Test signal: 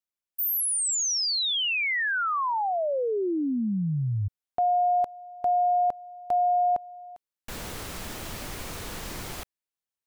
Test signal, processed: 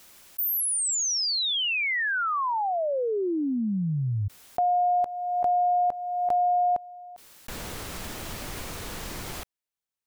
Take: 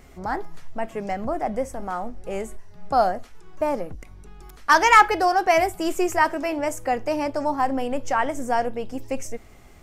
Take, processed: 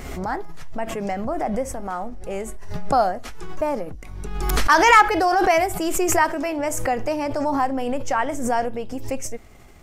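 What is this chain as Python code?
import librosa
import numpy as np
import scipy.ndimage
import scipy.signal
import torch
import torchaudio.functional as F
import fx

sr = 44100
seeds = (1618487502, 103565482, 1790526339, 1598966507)

y = fx.pre_swell(x, sr, db_per_s=36.0)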